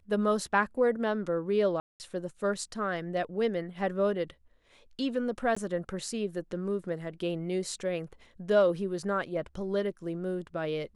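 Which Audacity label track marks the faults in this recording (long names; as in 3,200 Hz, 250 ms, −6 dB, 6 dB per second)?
1.800000	2.000000	drop-out 199 ms
5.550000	5.570000	drop-out 15 ms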